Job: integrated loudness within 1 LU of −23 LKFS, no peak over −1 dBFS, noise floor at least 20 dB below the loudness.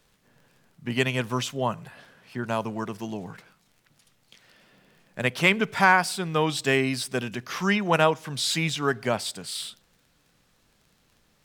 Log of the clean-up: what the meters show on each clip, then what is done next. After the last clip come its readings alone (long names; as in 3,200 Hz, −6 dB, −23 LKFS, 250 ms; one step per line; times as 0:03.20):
crackle rate 25 per second; integrated loudness −25.5 LKFS; sample peak −4.5 dBFS; target loudness −23.0 LKFS
→ click removal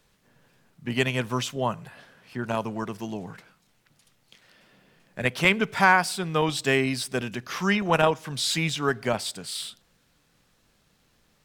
crackle rate 0.44 per second; integrated loudness −25.5 LKFS; sample peak −4.5 dBFS; target loudness −23.0 LKFS
→ level +2.5 dB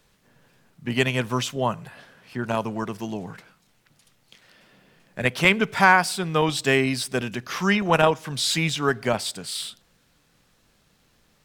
integrated loudness −23.0 LKFS; sample peak −2.0 dBFS; background noise floor −64 dBFS